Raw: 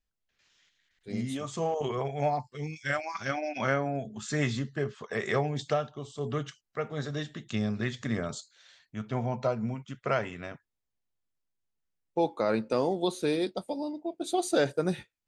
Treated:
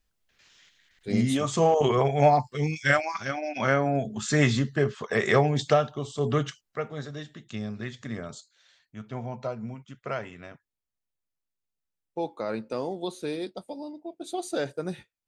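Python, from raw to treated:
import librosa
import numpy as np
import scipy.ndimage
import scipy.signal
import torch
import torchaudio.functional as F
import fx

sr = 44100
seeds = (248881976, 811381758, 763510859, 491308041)

y = fx.gain(x, sr, db=fx.line((2.9, 9.0), (3.33, 0.0), (3.97, 7.0), (6.46, 7.0), (7.14, -4.0)))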